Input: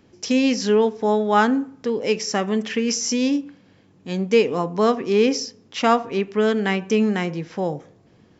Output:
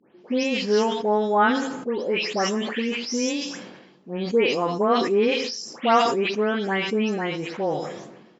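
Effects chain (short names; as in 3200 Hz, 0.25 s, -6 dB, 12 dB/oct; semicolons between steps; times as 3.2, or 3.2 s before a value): spectral delay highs late, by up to 0.247 s; HPF 260 Hz 12 dB/oct; air absorption 100 m; on a send: echo 0.109 s -20 dB; on the sum: sustainer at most 50 dB/s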